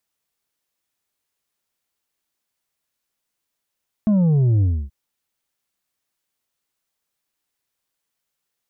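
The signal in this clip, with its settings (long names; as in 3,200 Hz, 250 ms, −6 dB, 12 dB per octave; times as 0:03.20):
bass drop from 220 Hz, over 0.83 s, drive 5 dB, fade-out 0.28 s, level −14 dB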